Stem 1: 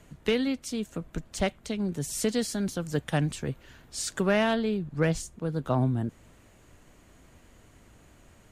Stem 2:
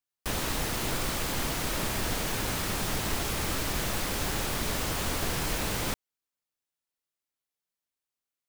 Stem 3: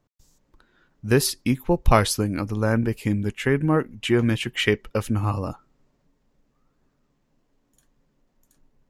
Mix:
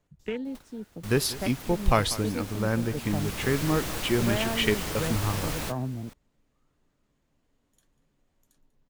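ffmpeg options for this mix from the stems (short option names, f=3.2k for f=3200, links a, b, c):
-filter_complex "[0:a]afwtdn=0.0224,volume=-6.5dB[a];[1:a]volume=-2.5dB,afade=t=in:st=2.93:d=0.66:silence=0.354813,asplit=2[b][c];[c]volume=-19.5dB[d];[2:a]equalizer=f=3.5k:t=o:w=0.77:g=4.5,volume=-5.5dB,asplit=3[e][f][g];[f]volume=-17.5dB[h];[g]apad=whole_len=374211[i];[b][i]sidechaingate=range=-33dB:threshold=-56dB:ratio=16:detection=peak[j];[d][h]amix=inputs=2:normalize=0,aecho=0:1:193:1[k];[a][j][e][k]amix=inputs=4:normalize=0"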